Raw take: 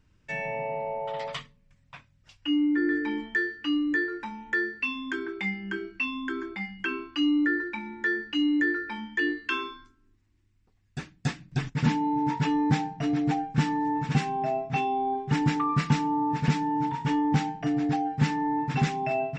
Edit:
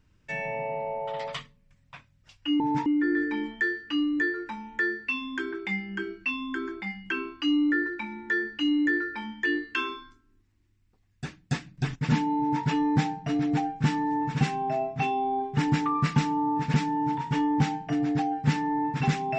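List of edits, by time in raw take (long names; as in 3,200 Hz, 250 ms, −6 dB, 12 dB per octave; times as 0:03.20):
0:12.12–0:12.38: duplicate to 0:02.60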